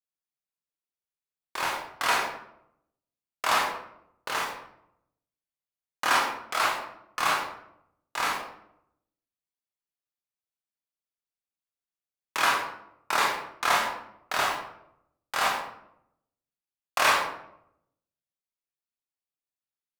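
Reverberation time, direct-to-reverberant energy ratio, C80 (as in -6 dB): 0.75 s, -3.5 dB, 6.5 dB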